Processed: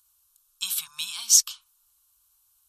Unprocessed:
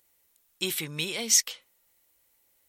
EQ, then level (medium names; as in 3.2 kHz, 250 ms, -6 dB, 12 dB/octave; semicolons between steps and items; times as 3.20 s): elliptic band-stop 120–1100 Hz, stop band 80 dB; brick-wall FIR low-pass 14 kHz; static phaser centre 540 Hz, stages 6; +5.5 dB